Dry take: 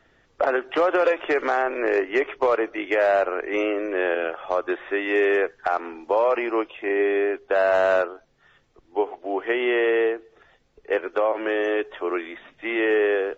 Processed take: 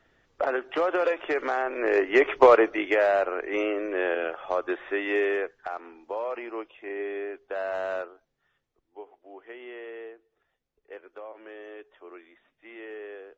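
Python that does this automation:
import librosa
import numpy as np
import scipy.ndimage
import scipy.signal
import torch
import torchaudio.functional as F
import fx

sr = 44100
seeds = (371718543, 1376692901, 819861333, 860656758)

y = fx.gain(x, sr, db=fx.line((1.7, -5.0), (2.43, 6.0), (3.12, -3.5), (5.1, -3.5), (5.74, -11.5), (8.0, -11.5), (9.0, -20.0)))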